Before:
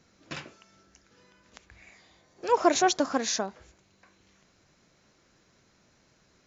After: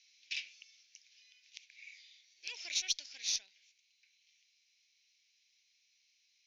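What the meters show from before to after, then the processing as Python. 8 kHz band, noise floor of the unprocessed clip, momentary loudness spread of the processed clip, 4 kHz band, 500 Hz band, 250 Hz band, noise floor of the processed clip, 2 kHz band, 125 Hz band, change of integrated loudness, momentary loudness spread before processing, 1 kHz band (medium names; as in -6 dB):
no reading, -66 dBFS, 21 LU, -2.0 dB, under -40 dB, under -40 dB, -75 dBFS, -9.0 dB, under -25 dB, -10.0 dB, 18 LU, under -40 dB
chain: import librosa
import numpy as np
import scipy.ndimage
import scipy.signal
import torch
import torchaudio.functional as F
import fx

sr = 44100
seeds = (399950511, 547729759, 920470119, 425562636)

y = scipy.signal.sosfilt(scipy.signal.ellip(3, 1.0, 40, [2300.0, 6000.0], 'bandpass', fs=sr, output='sos'), x)
y = fx.rider(y, sr, range_db=4, speed_s=0.5)
y = fx.cheby_harmonics(y, sr, harmonics=(6, 8), levels_db=(-34, -44), full_scale_db=-18.0)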